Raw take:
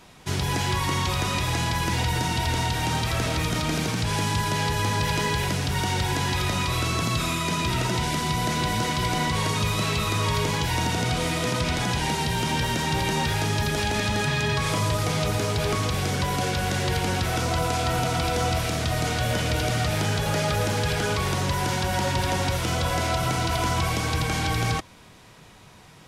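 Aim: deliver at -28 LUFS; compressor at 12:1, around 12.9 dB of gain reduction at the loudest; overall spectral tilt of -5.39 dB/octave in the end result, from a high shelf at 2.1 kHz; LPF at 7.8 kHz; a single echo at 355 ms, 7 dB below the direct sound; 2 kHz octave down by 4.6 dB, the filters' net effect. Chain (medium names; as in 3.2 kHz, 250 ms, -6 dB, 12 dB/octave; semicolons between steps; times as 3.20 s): low-pass 7.8 kHz; peaking EQ 2 kHz -3 dB; treble shelf 2.1 kHz -5 dB; compression 12:1, threshold -35 dBFS; delay 355 ms -7 dB; trim +10 dB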